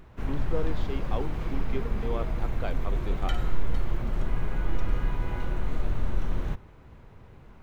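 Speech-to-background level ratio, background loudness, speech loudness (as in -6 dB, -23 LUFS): -4.5 dB, -33.5 LUFS, -38.0 LUFS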